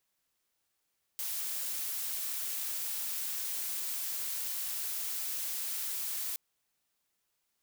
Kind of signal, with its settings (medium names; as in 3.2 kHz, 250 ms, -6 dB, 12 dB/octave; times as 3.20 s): noise blue, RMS -36 dBFS 5.17 s